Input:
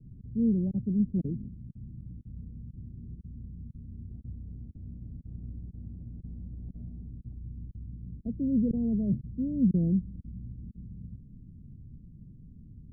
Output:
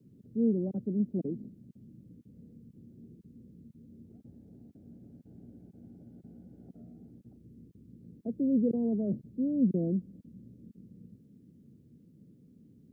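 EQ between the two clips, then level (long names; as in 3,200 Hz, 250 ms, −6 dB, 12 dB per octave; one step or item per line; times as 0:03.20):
high-pass filter 400 Hz 12 dB per octave
+8.5 dB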